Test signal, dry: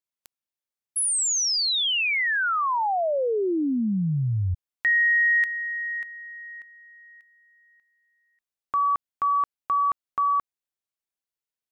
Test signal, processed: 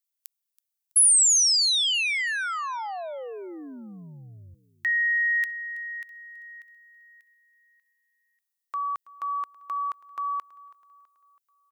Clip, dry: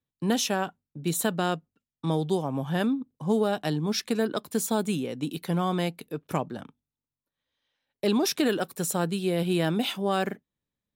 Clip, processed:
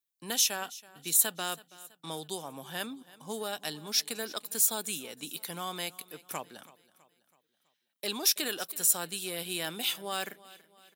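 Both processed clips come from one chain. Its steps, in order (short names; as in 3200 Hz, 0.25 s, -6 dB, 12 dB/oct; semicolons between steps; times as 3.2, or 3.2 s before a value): tilt +4.5 dB/oct; on a send: feedback echo 0.327 s, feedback 48%, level -20 dB; on the sum: gain -7.5 dB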